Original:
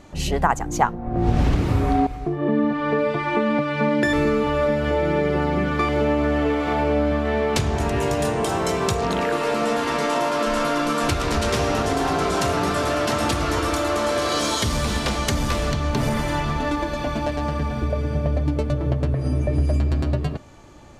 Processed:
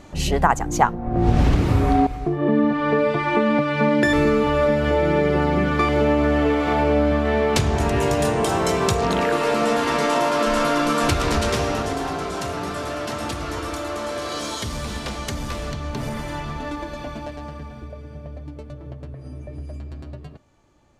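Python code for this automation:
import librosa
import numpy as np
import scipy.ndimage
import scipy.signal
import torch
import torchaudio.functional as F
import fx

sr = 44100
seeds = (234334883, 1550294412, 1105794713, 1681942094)

y = fx.gain(x, sr, db=fx.line((11.27, 2.0), (12.27, -6.0), (16.98, -6.0), (18.01, -14.0)))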